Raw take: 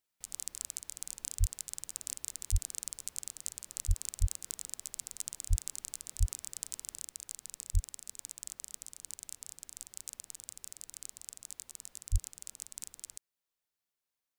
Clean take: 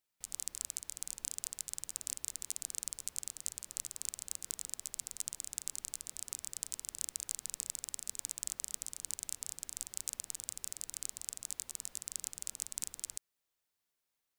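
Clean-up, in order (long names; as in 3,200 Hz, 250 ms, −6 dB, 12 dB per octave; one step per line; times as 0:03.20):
high-pass at the plosives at 0:01.39/0:02.51/0:03.87/0:04.20/0:05.49/0:06.19/0:07.73/0:12.11
level correction +4.5 dB, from 0:07.00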